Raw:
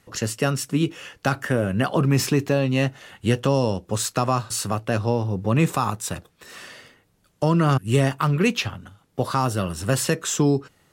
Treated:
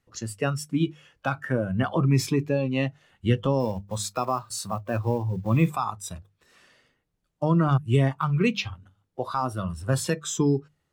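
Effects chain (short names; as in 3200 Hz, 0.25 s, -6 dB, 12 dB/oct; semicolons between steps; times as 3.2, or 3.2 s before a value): 3.6–5.69 block floating point 5-bit; high shelf 12000 Hz -9.5 dB; spectral noise reduction 13 dB; low shelf 96 Hz +10 dB; notches 50/100/150/200 Hz; gain -3.5 dB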